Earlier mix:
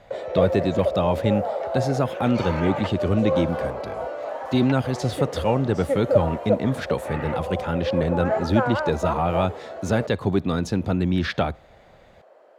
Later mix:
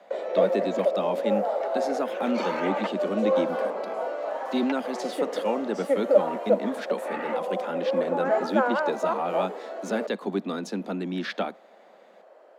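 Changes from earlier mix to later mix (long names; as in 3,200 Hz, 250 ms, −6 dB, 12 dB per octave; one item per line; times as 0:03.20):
speech −5.0 dB
master: add Butterworth high-pass 190 Hz 72 dB per octave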